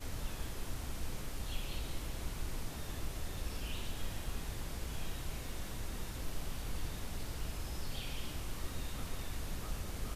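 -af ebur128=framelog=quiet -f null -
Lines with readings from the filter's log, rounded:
Integrated loudness:
  I:         -43.4 LUFS
  Threshold: -53.4 LUFS
Loudness range:
  LRA:         0.5 LU
  Threshold: -63.4 LUFS
  LRA low:   -43.7 LUFS
  LRA high:  -43.2 LUFS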